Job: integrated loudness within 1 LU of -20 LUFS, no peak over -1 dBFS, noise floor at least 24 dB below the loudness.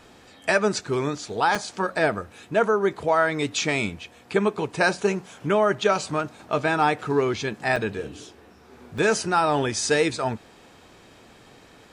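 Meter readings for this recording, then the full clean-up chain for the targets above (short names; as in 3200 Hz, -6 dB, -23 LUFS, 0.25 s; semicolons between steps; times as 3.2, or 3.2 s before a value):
dropouts 3; longest dropout 4.6 ms; loudness -24.0 LUFS; peak -8.0 dBFS; loudness target -20.0 LUFS
-> interpolate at 1.55/7.76/8.98, 4.6 ms; gain +4 dB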